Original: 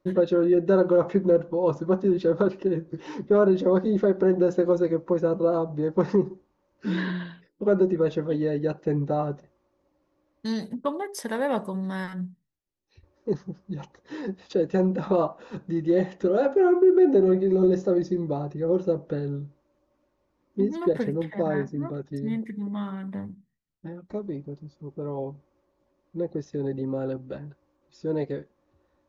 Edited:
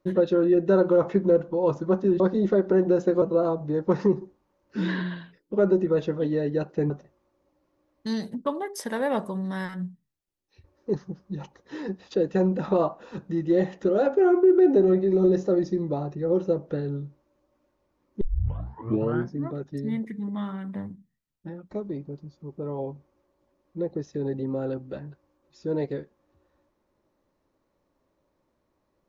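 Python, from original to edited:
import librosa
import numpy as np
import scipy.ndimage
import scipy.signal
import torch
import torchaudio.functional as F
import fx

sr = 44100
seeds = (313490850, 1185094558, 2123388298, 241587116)

y = fx.edit(x, sr, fx.cut(start_s=2.2, length_s=1.51),
    fx.cut(start_s=4.73, length_s=0.58),
    fx.cut(start_s=8.99, length_s=0.3),
    fx.tape_start(start_s=20.6, length_s=1.16), tone=tone)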